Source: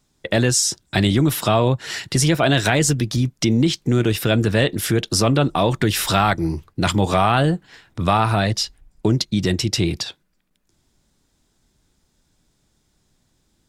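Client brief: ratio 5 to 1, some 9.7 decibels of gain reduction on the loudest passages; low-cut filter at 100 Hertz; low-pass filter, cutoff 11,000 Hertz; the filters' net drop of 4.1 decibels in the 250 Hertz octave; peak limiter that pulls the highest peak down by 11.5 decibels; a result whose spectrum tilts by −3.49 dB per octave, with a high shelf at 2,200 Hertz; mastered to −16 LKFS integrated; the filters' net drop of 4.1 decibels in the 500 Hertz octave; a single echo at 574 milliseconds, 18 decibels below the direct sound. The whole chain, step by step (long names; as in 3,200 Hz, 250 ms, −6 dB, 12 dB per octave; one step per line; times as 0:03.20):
high-pass filter 100 Hz
low-pass filter 11,000 Hz
parametric band 250 Hz −4 dB
parametric band 500 Hz −5 dB
high-shelf EQ 2,200 Hz +7.5 dB
downward compressor 5 to 1, threshold −21 dBFS
brickwall limiter −15.5 dBFS
single-tap delay 574 ms −18 dB
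level +11 dB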